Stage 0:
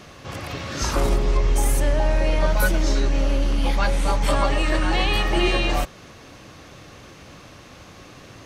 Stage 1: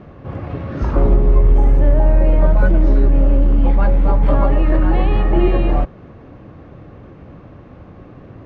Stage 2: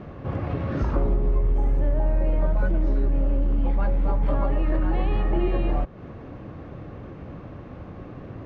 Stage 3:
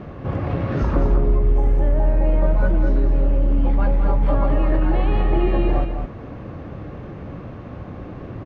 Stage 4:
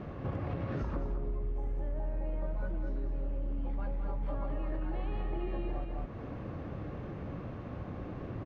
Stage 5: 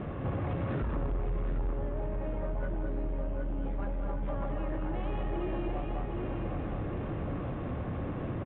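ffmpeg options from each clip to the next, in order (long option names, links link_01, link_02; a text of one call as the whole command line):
ffmpeg -i in.wav -af "lowpass=1900,tiltshelf=frequency=820:gain=7,volume=1.5dB" out.wav
ffmpeg -i in.wav -af "acompressor=threshold=-23dB:ratio=2.5" out.wav
ffmpeg -i in.wav -af "aecho=1:1:212:0.473,volume=4dB" out.wav
ffmpeg -i in.wav -af "acompressor=threshold=-25dB:ratio=6,volume=-7dB" out.wav
ffmpeg -i in.wav -af "aecho=1:1:763|1526|2289|3052|3815:0.501|0.221|0.097|0.0427|0.0188,aresample=8000,asoftclip=type=tanh:threshold=-31.5dB,aresample=44100,volume=5.5dB" out.wav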